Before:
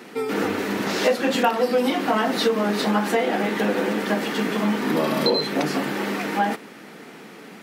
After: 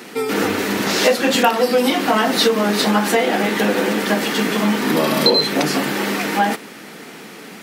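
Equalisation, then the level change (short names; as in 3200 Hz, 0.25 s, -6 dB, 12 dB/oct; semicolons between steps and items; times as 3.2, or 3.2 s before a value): bell 68 Hz +5 dB 0.92 oct; high shelf 3000 Hz +7.5 dB; +4.0 dB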